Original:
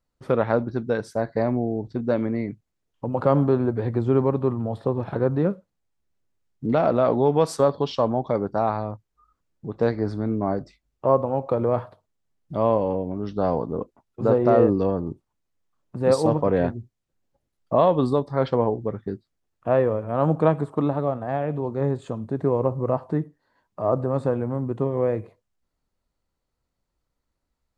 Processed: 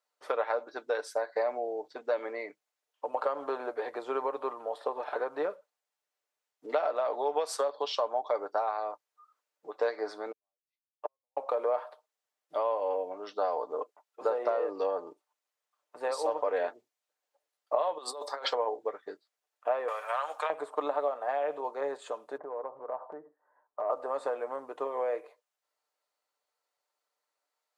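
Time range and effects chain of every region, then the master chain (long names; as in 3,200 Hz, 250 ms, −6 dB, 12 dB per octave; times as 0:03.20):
0:10.31–0:11.37: gate with flip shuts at −20 dBFS, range −36 dB + expander for the loud parts 2.5 to 1, over −50 dBFS
0:17.98–0:18.53: bass and treble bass −13 dB, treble +9 dB + compressor whose output falls as the input rises −33 dBFS
0:19.88–0:20.50: high-pass filter 1,200 Hz + high-shelf EQ 2,400 Hz +7.5 dB + multiband upward and downward compressor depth 100%
0:22.37–0:23.90: low-pass filter 1,400 Hz 24 dB per octave + low-shelf EQ 130 Hz +11.5 dB + downward compressor 10 to 1, threshold −25 dBFS
whole clip: high-pass filter 530 Hz 24 dB per octave; downward compressor 10 to 1, threshold −26 dBFS; comb filter 6.7 ms, depth 41%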